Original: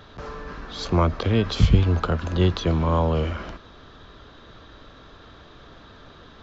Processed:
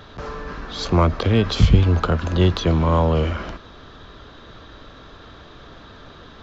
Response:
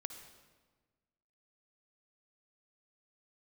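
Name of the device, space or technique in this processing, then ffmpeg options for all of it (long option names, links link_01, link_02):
parallel distortion: -filter_complex "[0:a]asplit=2[link_01][link_02];[link_02]asoftclip=type=hard:threshold=-20dB,volume=-11dB[link_03];[link_01][link_03]amix=inputs=2:normalize=0,volume=2dB"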